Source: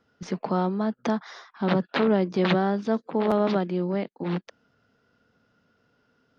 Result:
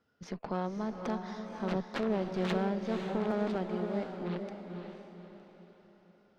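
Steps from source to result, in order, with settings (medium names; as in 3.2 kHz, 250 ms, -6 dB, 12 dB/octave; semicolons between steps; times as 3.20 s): single-diode clipper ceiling -28 dBFS; echo that smears into a reverb 524 ms, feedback 42%, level -5.5 dB; trim -8 dB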